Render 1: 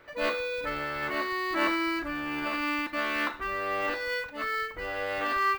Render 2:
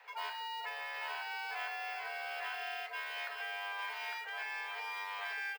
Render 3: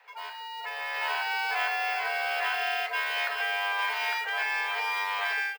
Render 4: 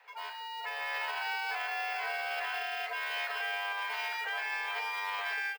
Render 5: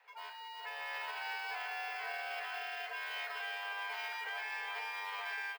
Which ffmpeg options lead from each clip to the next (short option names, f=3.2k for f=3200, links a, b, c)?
-filter_complex "[0:a]aecho=1:1:855:0.668,acrossover=split=110|6800[a][b][c];[a]acompressor=threshold=-60dB:ratio=4[d];[b]acompressor=threshold=-36dB:ratio=4[e];[c]acompressor=threshold=-53dB:ratio=4[f];[d][e][f]amix=inputs=3:normalize=0,afreqshift=410,volume=-3.5dB"
-af "dynaudnorm=f=540:g=3:m=11.5dB"
-af "alimiter=level_in=0.5dB:limit=-24dB:level=0:latency=1:release=43,volume=-0.5dB,volume=-2dB"
-af "aecho=1:1:359:0.335,volume=-6dB"